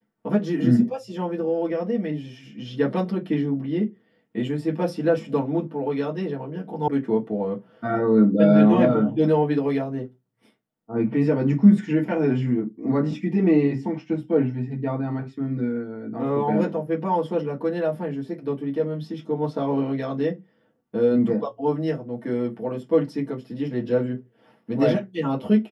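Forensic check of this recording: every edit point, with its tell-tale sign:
0:06.88: cut off before it has died away

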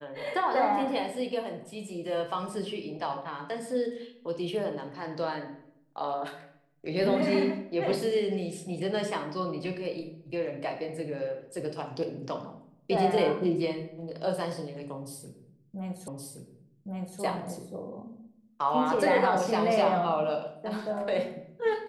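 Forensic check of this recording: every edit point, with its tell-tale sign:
0:16.08: the same again, the last 1.12 s

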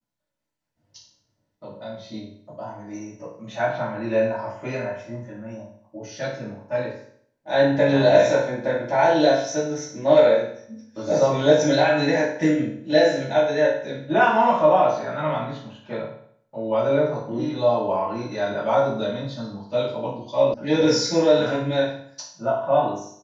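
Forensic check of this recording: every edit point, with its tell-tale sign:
0:20.54: cut off before it has died away

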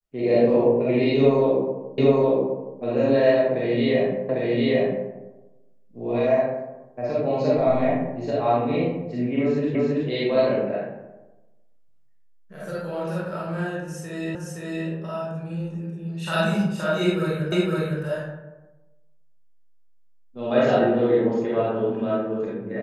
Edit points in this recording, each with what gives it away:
0:01.98: the same again, the last 0.82 s
0:04.29: the same again, the last 0.8 s
0:09.75: the same again, the last 0.33 s
0:14.35: the same again, the last 0.52 s
0:17.52: the same again, the last 0.51 s

